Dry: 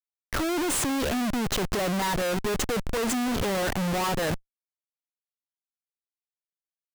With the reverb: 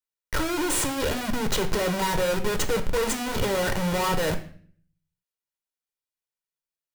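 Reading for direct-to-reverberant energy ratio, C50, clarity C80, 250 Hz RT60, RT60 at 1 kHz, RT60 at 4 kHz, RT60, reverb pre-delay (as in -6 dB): 7.0 dB, 12.0 dB, 16.5 dB, 0.70 s, 0.45 s, 0.45 s, 0.50 s, 5 ms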